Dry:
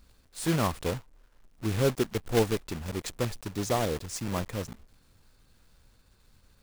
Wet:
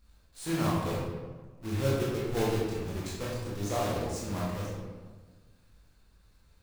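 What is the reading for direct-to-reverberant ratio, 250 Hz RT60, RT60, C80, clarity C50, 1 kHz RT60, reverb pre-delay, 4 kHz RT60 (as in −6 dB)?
−6.5 dB, 1.6 s, 1.4 s, 2.0 dB, −1.0 dB, 1.3 s, 16 ms, 0.80 s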